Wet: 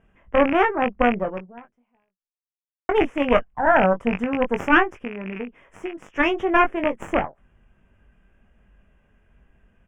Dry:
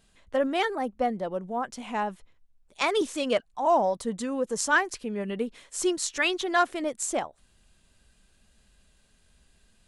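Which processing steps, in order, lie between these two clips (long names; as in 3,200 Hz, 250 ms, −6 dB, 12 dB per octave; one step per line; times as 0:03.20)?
loose part that buzzes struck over −37 dBFS, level −17 dBFS
0:04.92–0:06.12: downward compressor 3 to 1, threshold −36 dBFS, peak gain reduction 12 dB
harmonic generator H 4 −8 dB, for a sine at −9 dBFS
Butterworth band-reject 4,200 Hz, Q 1.2
high-frequency loss of the air 360 metres
0:01.25–0:02.89: fade out exponential
double-tracking delay 21 ms −7 dB
level +6 dB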